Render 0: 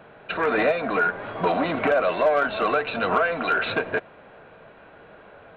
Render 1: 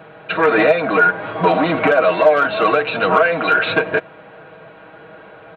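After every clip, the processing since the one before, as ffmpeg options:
-af "highpass=60,aecho=1:1:6.3:0.57,volume=6dB"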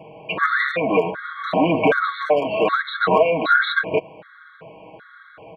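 -af "afftfilt=real='re*gt(sin(2*PI*1.3*pts/sr)*(1-2*mod(floor(b*sr/1024/1100),2)),0)':imag='im*gt(sin(2*PI*1.3*pts/sr)*(1-2*mod(floor(b*sr/1024/1100),2)),0)':win_size=1024:overlap=0.75"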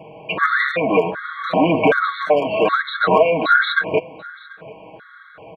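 -af "aecho=1:1:737:0.075,volume=2dB"

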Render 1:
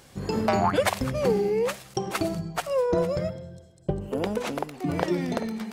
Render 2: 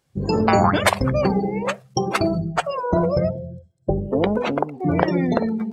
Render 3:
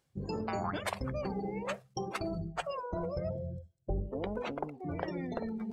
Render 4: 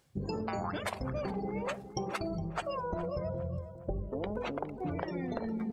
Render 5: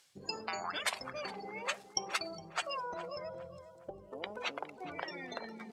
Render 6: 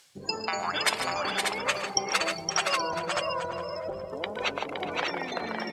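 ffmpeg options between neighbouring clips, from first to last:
-af "afftdn=nr=27:nf=-36,afftfilt=real='re*lt(hypot(re,im),0.562)':imag='im*lt(hypot(re,im),0.562)':win_size=1024:overlap=0.75,volume=8.5dB"
-af "areverse,acompressor=threshold=-30dB:ratio=4,areverse,asubboost=boost=4.5:cutoff=70,volume=-4.5dB"
-filter_complex "[0:a]acompressor=threshold=-40dB:ratio=6,asplit=2[a][b];[b]adelay=412,lowpass=f=1.9k:p=1,volume=-12dB,asplit=2[c][d];[d]adelay=412,lowpass=f=1.9k:p=1,volume=0.42,asplit=2[e][f];[f]adelay=412,lowpass=f=1.9k:p=1,volume=0.42,asplit=2[g][h];[h]adelay=412,lowpass=f=1.9k:p=1,volume=0.42[i];[a][c][e][g][i]amix=inputs=5:normalize=0,volume=7.5dB"
-af "bandpass=f=5.2k:t=q:w=0.6:csg=0,volume=9dB"
-af "aecho=1:1:116|148|517|591|824:0.133|0.316|0.562|0.596|0.188,volume=8dB"

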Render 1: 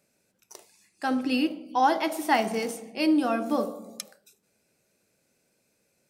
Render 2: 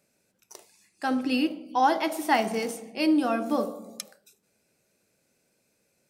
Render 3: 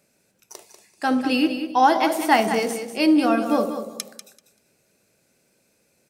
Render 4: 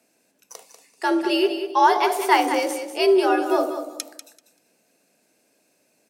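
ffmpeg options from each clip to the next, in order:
-af anull
-af "aecho=1:1:193|386|579:0.335|0.0603|0.0109,volume=5.5dB"
-af "afreqshift=78"

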